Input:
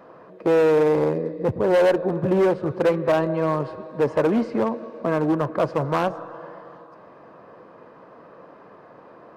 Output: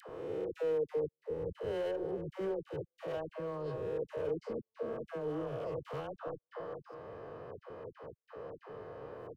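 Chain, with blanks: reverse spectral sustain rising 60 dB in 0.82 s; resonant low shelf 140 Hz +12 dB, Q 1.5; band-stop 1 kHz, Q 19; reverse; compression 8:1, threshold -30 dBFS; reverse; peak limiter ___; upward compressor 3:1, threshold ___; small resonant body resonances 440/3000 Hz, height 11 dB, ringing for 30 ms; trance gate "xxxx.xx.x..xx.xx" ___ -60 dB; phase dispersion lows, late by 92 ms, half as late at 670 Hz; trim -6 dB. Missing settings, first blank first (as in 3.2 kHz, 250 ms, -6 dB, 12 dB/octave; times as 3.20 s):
-28.5 dBFS, -44 dBFS, 136 bpm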